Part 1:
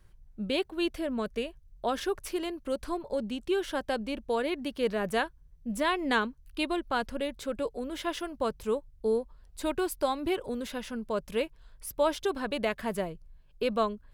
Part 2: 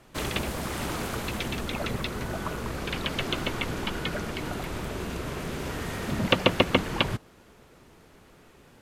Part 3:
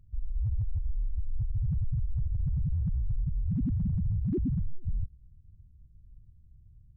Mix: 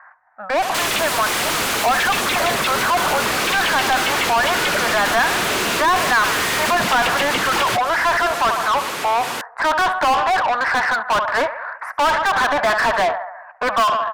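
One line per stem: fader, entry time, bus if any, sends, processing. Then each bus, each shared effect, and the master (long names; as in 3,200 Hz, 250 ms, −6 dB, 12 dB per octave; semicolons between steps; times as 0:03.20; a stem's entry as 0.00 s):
0.0 dB, 0.00 s, no send, echo send −21.5 dB, elliptic band-pass filter 710–1,800 Hz, stop band 40 dB; automatic gain control gain up to 10 dB
+0.5 dB, 0.60 s, no send, no echo send, low-shelf EQ 270 Hz +10 dB; downward compressor, threshold −28 dBFS, peak gain reduction 16 dB; spectral tilt +3.5 dB per octave
muted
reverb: not used
echo: repeating echo 70 ms, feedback 56%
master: mid-hump overdrive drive 39 dB, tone 3,100 Hz, clips at −9.5 dBFS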